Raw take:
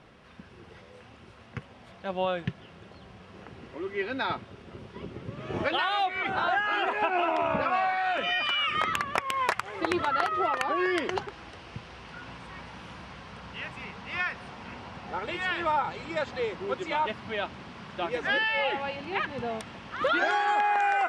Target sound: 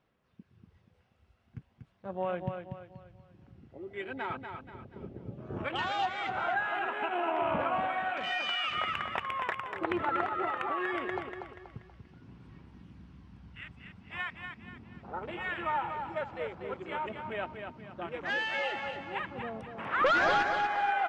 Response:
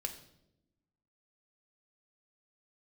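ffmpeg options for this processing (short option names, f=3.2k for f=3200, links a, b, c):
-filter_complex "[0:a]asplit=3[a][b][c];[a]afade=t=out:st=19.77:d=0.02[d];[b]asplit=2[e][f];[f]highpass=f=720:p=1,volume=21dB,asoftclip=type=tanh:threshold=-13.5dB[g];[e][g]amix=inputs=2:normalize=0,lowpass=f=2.7k:p=1,volume=-6dB,afade=t=in:st=19.77:d=0.02,afade=t=out:st=20.42:d=0.02[h];[c]afade=t=in:st=20.42:d=0.02[i];[d][h][i]amix=inputs=3:normalize=0,afwtdn=0.0158,aphaser=in_gain=1:out_gain=1:delay=1.5:decay=0.27:speed=0.4:type=sinusoidal,asplit=2[j][k];[k]aecho=0:1:240|480|720|960|1200:0.473|0.185|0.072|0.0281|0.0109[l];[j][l]amix=inputs=2:normalize=0,volume=-6.5dB"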